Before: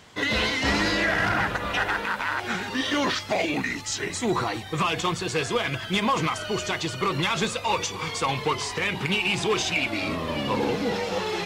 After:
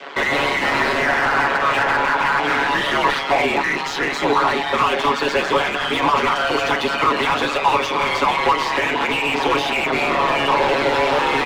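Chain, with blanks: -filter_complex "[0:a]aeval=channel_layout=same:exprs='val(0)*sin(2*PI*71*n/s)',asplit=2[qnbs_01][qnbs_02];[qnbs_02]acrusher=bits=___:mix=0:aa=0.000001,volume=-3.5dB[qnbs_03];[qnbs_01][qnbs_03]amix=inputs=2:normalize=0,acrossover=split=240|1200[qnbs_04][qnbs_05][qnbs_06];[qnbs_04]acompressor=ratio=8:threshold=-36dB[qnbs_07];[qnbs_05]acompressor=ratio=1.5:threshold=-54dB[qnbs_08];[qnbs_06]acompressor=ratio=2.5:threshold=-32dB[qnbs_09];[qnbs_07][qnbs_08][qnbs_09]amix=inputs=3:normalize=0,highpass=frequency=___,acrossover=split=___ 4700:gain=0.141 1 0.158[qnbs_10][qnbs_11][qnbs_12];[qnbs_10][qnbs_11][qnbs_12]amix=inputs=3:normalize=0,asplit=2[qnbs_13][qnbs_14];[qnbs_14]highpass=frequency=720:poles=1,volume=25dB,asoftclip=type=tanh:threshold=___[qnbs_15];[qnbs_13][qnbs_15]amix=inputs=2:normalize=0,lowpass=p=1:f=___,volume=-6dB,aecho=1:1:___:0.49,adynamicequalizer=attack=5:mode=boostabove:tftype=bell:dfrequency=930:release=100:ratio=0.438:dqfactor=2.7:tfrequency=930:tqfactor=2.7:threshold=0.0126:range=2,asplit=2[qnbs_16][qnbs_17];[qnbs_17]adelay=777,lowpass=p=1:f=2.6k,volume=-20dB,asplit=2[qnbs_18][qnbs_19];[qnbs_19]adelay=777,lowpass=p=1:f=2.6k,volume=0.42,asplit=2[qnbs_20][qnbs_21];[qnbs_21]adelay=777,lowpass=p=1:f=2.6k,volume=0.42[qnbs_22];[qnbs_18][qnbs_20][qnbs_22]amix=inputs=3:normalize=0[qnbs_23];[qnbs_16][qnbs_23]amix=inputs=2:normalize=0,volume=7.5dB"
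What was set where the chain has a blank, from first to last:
6, 150, 250, -15.5dB, 1.1k, 7.2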